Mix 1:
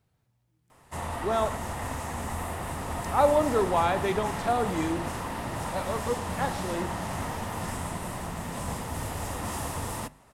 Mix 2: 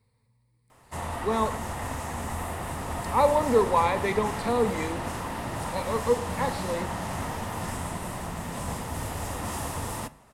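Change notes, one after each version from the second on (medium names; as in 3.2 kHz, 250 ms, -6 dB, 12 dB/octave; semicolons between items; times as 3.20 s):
speech: add rippled EQ curve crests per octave 0.94, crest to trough 14 dB; background: send +6.5 dB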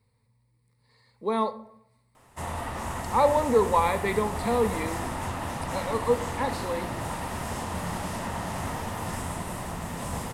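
background: entry +1.45 s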